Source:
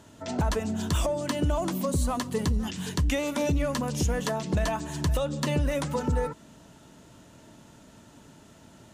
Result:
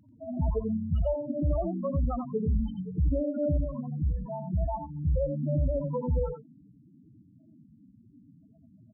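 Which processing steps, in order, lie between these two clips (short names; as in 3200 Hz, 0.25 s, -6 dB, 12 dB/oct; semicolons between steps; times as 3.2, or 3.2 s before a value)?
loudest bins only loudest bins 4; 3.56–5.1 fixed phaser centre 1700 Hz, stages 6; echo 88 ms -7.5 dB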